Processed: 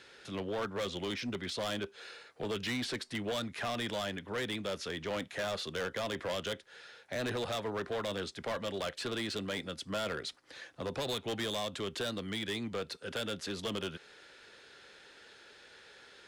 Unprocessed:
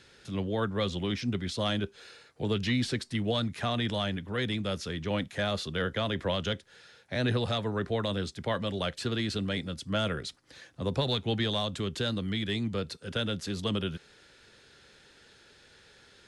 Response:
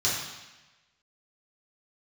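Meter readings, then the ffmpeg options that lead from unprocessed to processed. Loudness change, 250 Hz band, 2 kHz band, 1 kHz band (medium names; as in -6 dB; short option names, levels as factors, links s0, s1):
-5.5 dB, -8.0 dB, -3.0 dB, -3.5 dB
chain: -filter_complex "[0:a]bass=f=250:g=-13,treble=f=4000:g=-5,asplit=2[s0][s1];[s1]acompressor=threshold=0.00891:ratio=6,volume=0.708[s2];[s0][s2]amix=inputs=2:normalize=0,volume=31.6,asoftclip=hard,volume=0.0316,volume=0.841"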